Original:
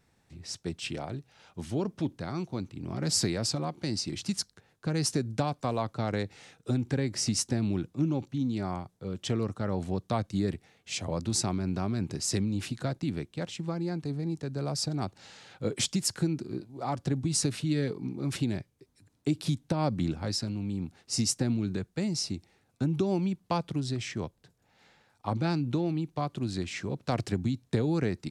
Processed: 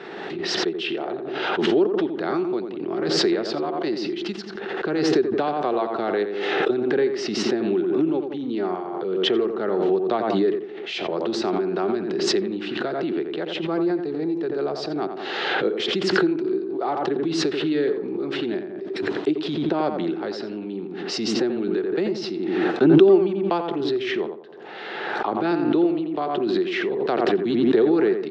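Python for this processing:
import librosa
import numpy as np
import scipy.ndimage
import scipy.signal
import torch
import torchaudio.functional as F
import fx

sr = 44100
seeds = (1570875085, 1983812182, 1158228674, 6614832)

p1 = fx.cabinet(x, sr, low_hz=260.0, low_slope=24, high_hz=3300.0, hz=(260.0, 380.0, 540.0, 990.0, 2300.0), db=(-10, 10, -5, -5, -7))
p2 = p1 + fx.echo_tape(p1, sr, ms=87, feedback_pct=37, wet_db=-5.5, lp_hz=1700.0, drive_db=19.0, wow_cents=15, dry=0)
p3 = fx.pre_swell(p2, sr, db_per_s=27.0)
y = F.gain(torch.from_numpy(p3), 8.5).numpy()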